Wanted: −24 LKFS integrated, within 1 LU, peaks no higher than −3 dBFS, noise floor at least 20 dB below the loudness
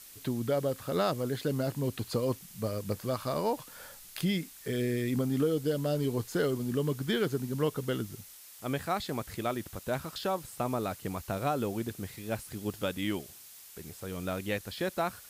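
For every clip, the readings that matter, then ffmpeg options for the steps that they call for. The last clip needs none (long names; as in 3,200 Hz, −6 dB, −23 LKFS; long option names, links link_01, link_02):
background noise floor −51 dBFS; target noise floor −53 dBFS; integrated loudness −33.0 LKFS; sample peak −16.5 dBFS; target loudness −24.0 LKFS
→ -af "afftdn=noise_reduction=6:noise_floor=-51"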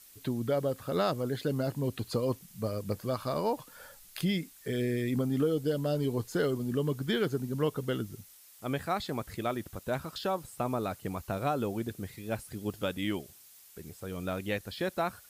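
background noise floor −56 dBFS; integrated loudness −33.0 LKFS; sample peak −16.5 dBFS; target loudness −24.0 LKFS
→ -af "volume=9dB"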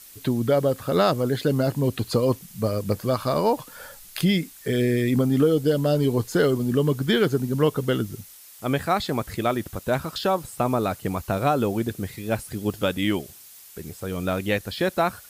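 integrated loudness −24.0 LKFS; sample peak −7.5 dBFS; background noise floor −47 dBFS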